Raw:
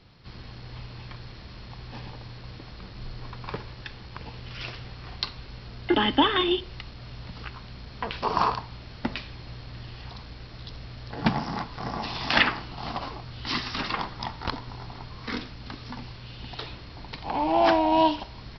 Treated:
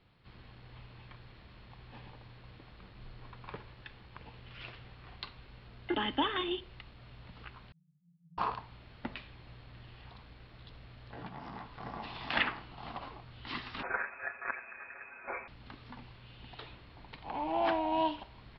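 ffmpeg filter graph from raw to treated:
-filter_complex "[0:a]asettb=1/sr,asplit=3[a][b][c];[a]atrim=end=7.724[d];[b]atrim=start=7.72:end=8.38,asetpts=PTS-STARTPTS,afade=t=in:d=0.004:c=qsin,afade=t=out:st=0.656:d=0.004:c=qsin,asuperpass=centerf=160:order=8:qfactor=5.3,aecho=1:1:4.3:0.55,atrim=end_sample=29106[e];[c]atrim=start=8.376[f];[d][e]acrossfade=d=0.004:c1=hsin:c2=qsin[g];[g][f]acrossfade=d=0.004:c1=qsin:c2=hsin,asettb=1/sr,asplit=3[h][i][j];[h]atrim=end=11.114[k];[i]atrim=start=11.11:end=11.67,asetpts=PTS-STARTPTS,afade=t=in:d=0.004:c=qsin,afade=t=out:st=0.556:d=0.004:c=qsin,acompressor=threshold=-30dB:ratio=8:attack=3.2:release=140:knee=1:detection=peak,asplit=2[l][m];[m]adelay=16,volume=-7dB[n];[l][n]amix=inputs=2:normalize=0,atrim=end_sample=24696[o];[j]atrim=start=11.666[p];[k][o]acrossfade=d=0.004:c1=hsin:c2=qsin[q];[q][p]acrossfade=d=0.004:c1=qsin:c2=hsin,asettb=1/sr,asplit=3[r][s][t];[r]atrim=end=13.834[u];[s]atrim=start=13.83:end=15.48,asetpts=PTS-STARTPTS,afade=t=in:d=0.004:c=qsin,afade=t=out:st=1.646:d=0.004:c=qsin,tiltshelf=f=720:g=-8,aecho=1:1:6.8:0.98,atrim=end_sample=72765,lowpass=f=2.2k:t=q:w=0.5098,lowpass=f=2.2k:t=q:w=0.6013,lowpass=f=2.2k:t=q:w=0.9,lowpass=f=2.2k:t=q:w=2.563,afreqshift=-2600[v];[t]atrim=start=15.476[w];[u][v]acrossfade=d=0.004:c1=hsin:c2=qsin[x];[x][w]acrossfade=d=0.004:c1=qsin:c2=hsin,lowpass=f=3.6k:w=0.5412,lowpass=f=3.6k:w=1.3066,lowshelf=f=470:g=-3,volume=-9dB"

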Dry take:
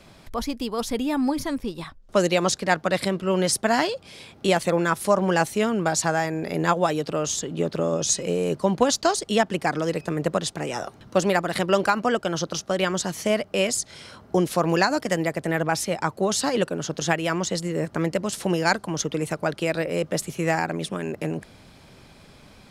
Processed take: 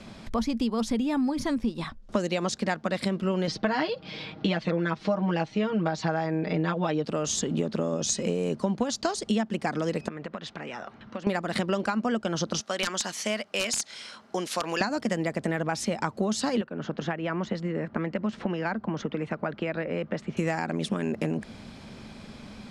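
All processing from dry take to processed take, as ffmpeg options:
-filter_complex "[0:a]asettb=1/sr,asplit=3[a][b][c];[a]atrim=end=3.474[d];[b]atrim=start=3.47:end=7.05,asetpts=PTS-STARTPTS,afade=t=in:d=0.004:c=qsin,afade=t=out:st=3.576:d=0.004:c=qsin,lowpass=f=4.6k:w=0.5412,lowpass=f=4.6k:w=1.3066,aecho=1:1:6.4:0.89,atrim=end_sample=157878[e];[c]atrim=start=7.046[f];[d][e]acrossfade=d=0.004:c1=hsin:c2=qsin[g];[g][f]acrossfade=d=0.004:c1=qsin:c2=hsin,asettb=1/sr,asplit=3[h][i][j];[h]atrim=end=10.084[k];[i]atrim=start=10.08:end=11.27,asetpts=PTS-STARTPTS,afade=t=in:d=0.004:c=qsin,afade=t=out:st=1.186:d=0.004:c=qsin,lowpass=1.9k,tiltshelf=f=1.2k:g=-9,acompressor=threshold=-37dB:ratio=5:attack=3.2:release=140:knee=1:detection=peak[l];[j]atrim=start=11.266[m];[k][l]acrossfade=d=0.004:c1=hsin:c2=qsin[n];[n][m]acrossfade=d=0.004:c1=qsin:c2=hsin,asettb=1/sr,asplit=3[o][p][q];[o]atrim=end=12.614[r];[p]atrim=start=12.61:end=14.81,asetpts=PTS-STARTPTS,afade=t=in:d=0.004:c=qsin,afade=t=out:st=2.196:d=0.004:c=qsin,highpass=f=1.5k:p=1,aeval=exprs='(mod(6.68*val(0)+1,2)-1)/6.68':c=same[s];[q]atrim=start=14.806[t];[r][s]acrossfade=d=0.004:c1=hsin:c2=qsin[u];[u][t]acrossfade=d=0.004:c1=qsin:c2=hsin,asettb=1/sr,asplit=3[v][w][x];[v]atrim=end=16.614[y];[w]atrim=start=16.61:end=20.37,asetpts=PTS-STARTPTS,afade=t=in:d=0.004:c=qsin,afade=t=out:st=3.756:d=0.004:c=qsin,lowpass=1.8k,acrossover=split=130|1300[z][aa][ab];[z]acompressor=threshold=-52dB:ratio=4[ac];[aa]acompressor=threshold=-32dB:ratio=4[ad];[ab]acompressor=threshold=-36dB:ratio=4[ae];[ac][ad][ae]amix=inputs=3:normalize=0[af];[x]atrim=start=20.366[ag];[y][af]acrossfade=d=0.004:c1=hsin:c2=qsin[ah];[ah][ag]acrossfade=d=0.004:c1=qsin:c2=hsin,lowpass=7.8k,equalizer=f=220:t=o:w=0.32:g=11.5,acompressor=threshold=-27dB:ratio=6,volume=3dB"

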